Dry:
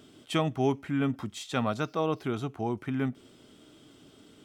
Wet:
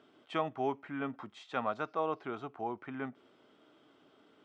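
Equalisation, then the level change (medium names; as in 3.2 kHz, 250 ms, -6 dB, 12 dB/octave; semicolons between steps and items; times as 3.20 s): band-pass filter 1 kHz, Q 0.83; distance through air 55 m; -1.0 dB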